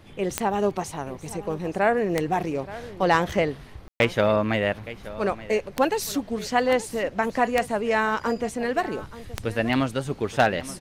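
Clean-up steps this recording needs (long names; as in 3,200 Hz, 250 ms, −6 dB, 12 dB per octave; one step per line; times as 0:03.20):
clipped peaks rebuilt −8.5 dBFS
click removal
ambience match 0:03.88–0:04.00
echo removal 876 ms −16.5 dB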